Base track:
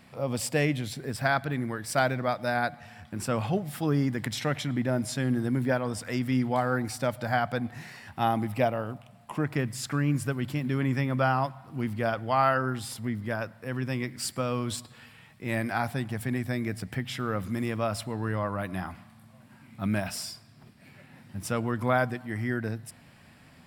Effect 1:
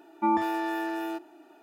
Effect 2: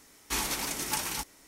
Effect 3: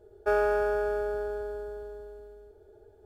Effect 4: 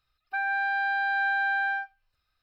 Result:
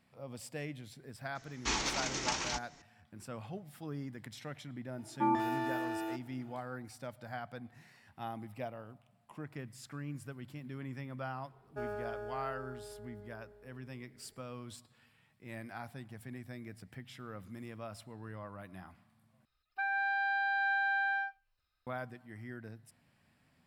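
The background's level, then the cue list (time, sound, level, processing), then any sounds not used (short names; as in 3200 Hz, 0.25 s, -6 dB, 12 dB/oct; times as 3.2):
base track -16 dB
1.35 add 2 -1 dB + steep low-pass 6900 Hz 48 dB/oct
4.98 add 1 -5.5 dB
11.5 add 3 -15.5 dB
19.45 replace with 4 -5.5 dB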